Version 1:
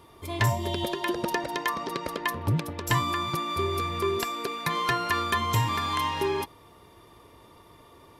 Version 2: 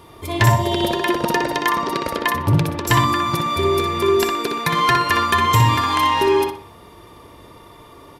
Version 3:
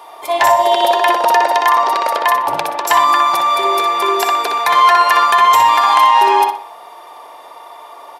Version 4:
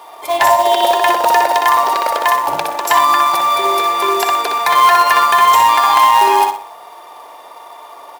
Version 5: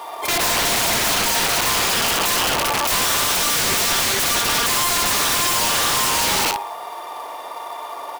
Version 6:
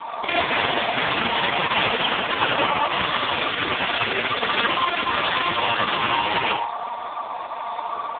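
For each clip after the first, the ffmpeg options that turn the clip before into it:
-filter_complex "[0:a]asplit=2[s0][s1];[s1]adelay=61,lowpass=f=3900:p=1,volume=0.668,asplit=2[s2][s3];[s3]adelay=61,lowpass=f=3900:p=1,volume=0.38,asplit=2[s4][s5];[s5]adelay=61,lowpass=f=3900:p=1,volume=0.38,asplit=2[s6][s7];[s7]adelay=61,lowpass=f=3900:p=1,volume=0.38,asplit=2[s8][s9];[s9]adelay=61,lowpass=f=3900:p=1,volume=0.38[s10];[s0][s2][s4][s6][s8][s10]amix=inputs=6:normalize=0,volume=2.51"
-af "highpass=f=750:t=q:w=3.9,alimiter=level_in=1.88:limit=0.891:release=50:level=0:latency=1,volume=0.891"
-af "acrusher=bits=4:mode=log:mix=0:aa=0.000001"
-filter_complex "[0:a]asplit=2[s0][s1];[s1]acompressor=threshold=0.112:ratio=12,volume=1.33[s2];[s0][s2]amix=inputs=2:normalize=0,aeval=exprs='(mod(3.76*val(0)+1,2)-1)/3.76':c=same,volume=0.708"
-filter_complex "[0:a]asplit=2[s0][s1];[s1]aecho=0:1:20|75:0.224|0.473[s2];[s0][s2]amix=inputs=2:normalize=0,volume=1.88" -ar 8000 -c:a libopencore_amrnb -b:a 4750

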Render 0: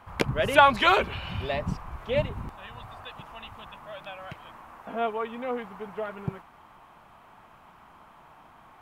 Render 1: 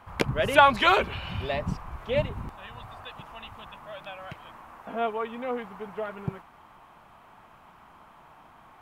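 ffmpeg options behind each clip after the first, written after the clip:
-af anull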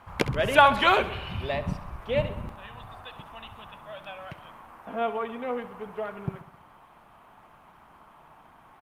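-af "aecho=1:1:66|132|198|264|330|396:0.2|0.12|0.0718|0.0431|0.0259|0.0155" -ar 48000 -c:a libopus -b:a 48k

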